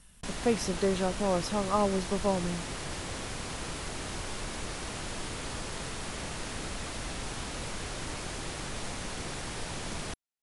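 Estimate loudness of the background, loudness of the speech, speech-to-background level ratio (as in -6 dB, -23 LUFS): -37.5 LUFS, -30.5 LUFS, 7.0 dB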